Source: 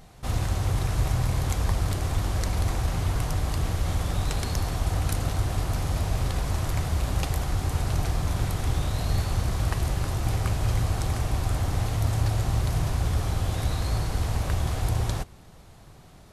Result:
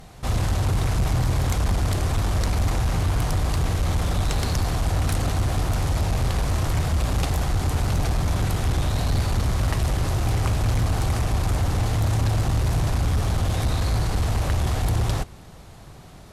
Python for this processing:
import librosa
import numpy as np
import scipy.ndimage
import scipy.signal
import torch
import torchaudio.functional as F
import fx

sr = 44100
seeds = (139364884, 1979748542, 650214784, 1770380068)

y = fx.cheby_harmonics(x, sr, harmonics=(5,), levels_db=(-14,), full_scale_db=-12.0)
y = fx.doppler_dist(y, sr, depth_ms=0.18)